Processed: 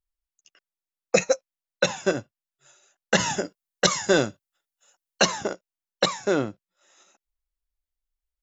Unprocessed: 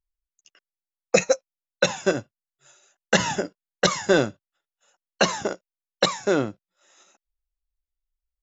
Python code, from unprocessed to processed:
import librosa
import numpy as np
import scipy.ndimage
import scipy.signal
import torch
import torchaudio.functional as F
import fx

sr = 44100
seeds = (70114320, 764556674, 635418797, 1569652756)

y = fx.high_shelf(x, sr, hz=fx.line((3.17, 6700.0), (5.25, 4400.0)), db=9.0, at=(3.17, 5.25), fade=0.02)
y = y * 10.0 ** (-1.5 / 20.0)